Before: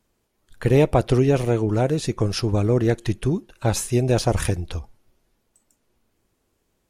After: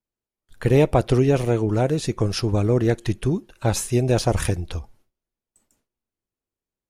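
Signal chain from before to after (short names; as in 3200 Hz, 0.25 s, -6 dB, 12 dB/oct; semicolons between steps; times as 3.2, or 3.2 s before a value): gate with hold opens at -49 dBFS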